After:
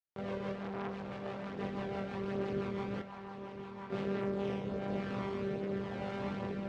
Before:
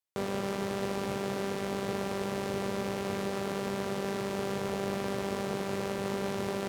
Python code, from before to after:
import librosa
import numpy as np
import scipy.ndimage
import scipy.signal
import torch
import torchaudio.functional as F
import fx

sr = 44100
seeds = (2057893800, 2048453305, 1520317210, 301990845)

y = scipy.signal.sosfilt(scipy.signal.butter(2, 2800.0, 'lowpass', fs=sr, output='sos'), x)
y = fx.rotary_switch(y, sr, hz=6.0, then_hz=1.0, switch_at_s=3.82)
y = fx.ladder_highpass(y, sr, hz=840.0, resonance_pct=60, at=(2.99, 3.9))
y = fx.chorus_voices(y, sr, voices=2, hz=0.62, base_ms=25, depth_ms=1.0, mix_pct=60)
y = y + 10.0 ** (-10.5 / 20.0) * np.pad(y, (int(1030 * sr / 1000.0), 0))[:len(y)]
y = fx.transformer_sat(y, sr, knee_hz=1200.0, at=(0.55, 1.59))